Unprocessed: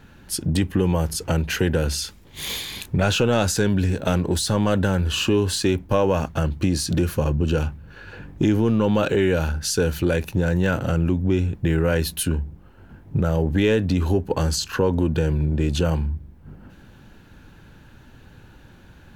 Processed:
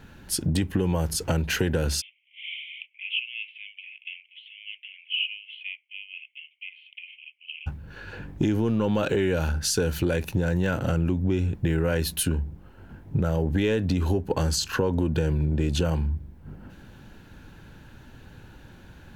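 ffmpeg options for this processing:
-filter_complex "[0:a]asplit=3[a][b][c];[a]afade=t=out:st=2:d=0.02[d];[b]asuperpass=centerf=2600:order=12:qfactor=2.4,afade=t=in:st=2:d=0.02,afade=t=out:st=7.66:d=0.02[e];[c]afade=t=in:st=7.66:d=0.02[f];[d][e][f]amix=inputs=3:normalize=0,bandreject=f=1.2k:w=23,acompressor=threshold=-21dB:ratio=3"

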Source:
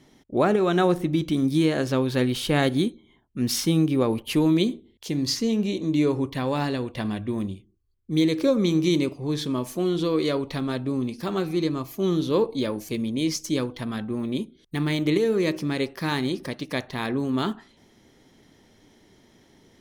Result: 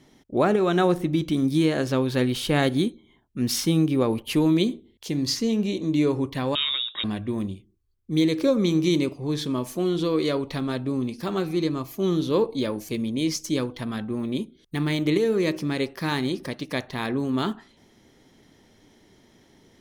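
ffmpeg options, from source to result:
-filter_complex "[0:a]asettb=1/sr,asplit=3[a][b][c];[a]atrim=end=6.554[d];[b]atrim=start=6.55:end=7.04,asetpts=PTS-STARTPTS,afade=t=in:d=0.004:c=qsin,afade=t=out:st=0.486:d=0.004:c=qsin,lowpass=f=3.3k:t=q:w=0.5098,lowpass=f=3.3k:t=q:w=0.6013,lowpass=f=3.3k:t=q:w=0.9,lowpass=f=3.3k:t=q:w=2.563,afreqshift=-3900[e];[c]atrim=start=7.036[f];[d][e]acrossfade=d=0.004:c1=hsin:c2=qsin[g];[g][f]acrossfade=d=0.004:c1=qsin:c2=hsin"

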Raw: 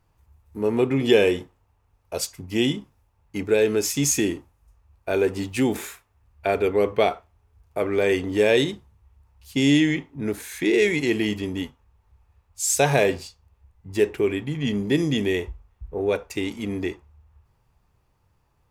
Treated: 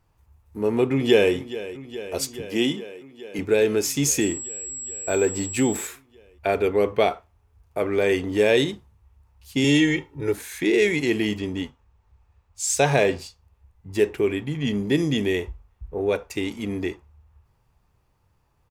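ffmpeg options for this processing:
-filter_complex "[0:a]asplit=2[a][b];[b]afade=t=in:st=0.9:d=0.01,afade=t=out:st=1.34:d=0.01,aecho=0:1:420|840|1260|1680|2100|2520|2940|3360|3780|4200|4620|5040:0.177828|0.142262|0.11381|0.0910479|0.0728383|0.0582707|0.0466165|0.0372932|0.0298346|0.0238677|0.0190941|0.0152753[c];[a][c]amix=inputs=2:normalize=0,asettb=1/sr,asplit=3[d][e][f];[d]atrim=end=2.424[g];[e]atrim=start=2.42:end=3.39,asetpts=PTS-STARTPTS,afade=t=in:d=0.004:c=qsin,afade=t=out:st=0.966:d=0.004:c=qsin,highpass=180[h];[f]atrim=start=3.386[i];[g][h]acrossfade=d=0.004:c1=hsin:c2=qsin[j];[j][i]acrossfade=d=0.004:c1=qsin:c2=hsin,asettb=1/sr,asplit=3[k][l][m];[k]atrim=end=4.214[n];[l]atrim=start=4.21:end=5.87,asetpts=PTS-STARTPTS,afade=t=in:d=0.004:c=qsin,afade=t=out:st=1.656:d=0.004:c=qsin,aeval=exprs='val(0)+0.0282*sin(2*PI*7700*n/s)':c=same[o];[m]atrim=start=5.866[p];[n][o]acrossfade=d=0.004:c1=hsin:c2=qsin[q];[q][p]acrossfade=d=0.004:c1=qsin:c2=hsin,asettb=1/sr,asplit=3[r][s][t];[r]atrim=end=9.644[u];[s]atrim=start=9.64:end=10.34,asetpts=PTS-STARTPTS,afade=t=in:d=0.004:c=qsin,afade=t=out:st=0.696:d=0.004:c=qsin,aecho=1:1:2.2:0.89,atrim=end_sample=30870[v];[t]atrim=start=10.336[w];[u][v]acrossfade=d=0.004:c1=hsin:c2=qsin[x];[x][w]acrossfade=d=0.004:c1=qsin:c2=hsin,asettb=1/sr,asplit=3[y][z][aa];[y]atrim=end=11.374[ab];[z]atrim=start=11.37:end=13.19,asetpts=PTS-STARTPTS,afade=t=in:d=0.004:c=qsin,afade=t=out:st=1.816:d=0.004:c=qsin,equalizer=f=12k:w=2:g=-11.5[ac];[aa]atrim=start=13.186[ad];[ab][ac]acrossfade=d=0.004:c1=hsin:c2=qsin[ae];[ae][ad]acrossfade=d=0.004:c1=qsin:c2=hsin"

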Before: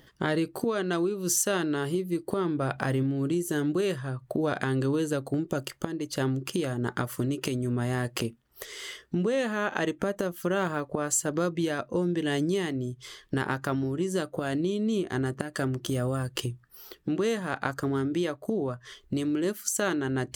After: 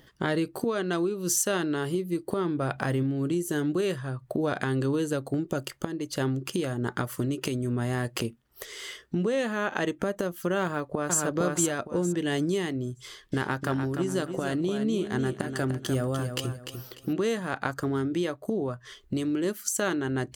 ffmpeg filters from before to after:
-filter_complex "[0:a]asplit=2[a][b];[b]afade=t=in:st=10.63:d=0.01,afade=t=out:st=11.2:d=0.01,aecho=0:1:460|920|1380|1840:0.841395|0.210349|0.0525872|0.0131468[c];[a][c]amix=inputs=2:normalize=0,asettb=1/sr,asplit=3[d][e][f];[d]atrim=end=13.024[g];[e]atrim=start=13.02:end=17.13,asetpts=PTS-STARTPTS,afade=t=in:d=0.004:c=qsin,afade=t=out:st=4.106:d=0.004:c=qsin,aecho=1:1:297|594|891:0.398|0.115|0.0335,atrim=end_sample=181251[h];[f]atrim=start=17.126[i];[g][h]acrossfade=d=0.004:c1=hsin:c2=qsin[j];[j][i]acrossfade=d=0.004:c1=qsin:c2=hsin"

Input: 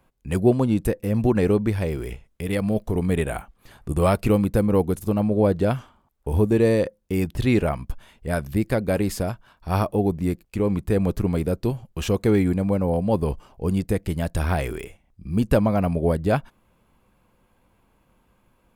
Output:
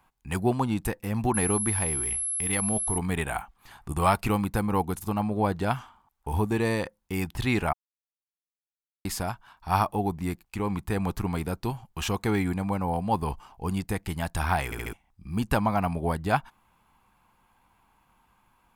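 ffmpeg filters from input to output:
-filter_complex "[0:a]asettb=1/sr,asplit=3[a][b][c];[a]atrim=end=1.344[d];[b]atrim=start=1.34:end=2.98,asetpts=PTS-STARTPTS,afade=t=in:d=0.004:c=qsin,afade=t=out:st=1.636:d=0.004:c=qsin,aeval=exprs='val(0)+0.0447*sin(2*PI*11000*n/s)':c=same[e];[c]atrim=start=2.976[f];[d][e]acrossfade=d=0.004:c1=hsin:c2=qsin[g];[g][f]acrossfade=d=0.004:c1=qsin:c2=hsin,asplit=7[h][i][j][k][l][m][n];[h]atrim=end=7.73,asetpts=PTS-STARTPTS,afade=t=out:st=7.726:d=0.004:c=hsin[o];[i]atrim=start=7.73:end=9.05,asetpts=PTS-STARTPTS,volume=0[p];[j]atrim=start=9.05:end=14.722,asetpts=PTS-STARTPTS,afade=t=in:d=0.004:c=hsin[q];[k]atrim=start=14.648:end=14.722[r];[l]atrim=start=14.648:end=14.722[s];[m]atrim=start=14.648:end=14.722[t];[n]atrim=start=14.928[u];[o][p][q]concat=n=3:v=0:a=1[v];[v][r]acrossfade=d=0.004:c1=hsin:c2=hsin[w];[w][s]acrossfade=d=0.004:c1=hsin:c2=hsin[x];[x][t]acrossfade=d=0.004:c1=hsin:c2=hsin[y];[y][u]acrossfade=d=0.004:c1=hsin:c2=hsin,lowshelf=f=680:t=q:w=3:g=-6"

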